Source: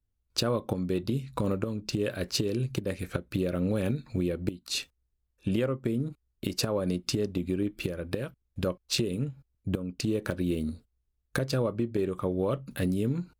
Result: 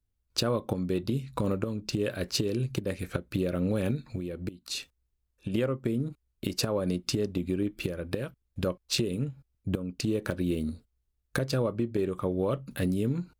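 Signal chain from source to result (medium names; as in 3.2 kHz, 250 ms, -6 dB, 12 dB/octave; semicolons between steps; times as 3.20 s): 3.97–5.54 s: compression 6:1, threshold -31 dBFS, peak gain reduction 8.5 dB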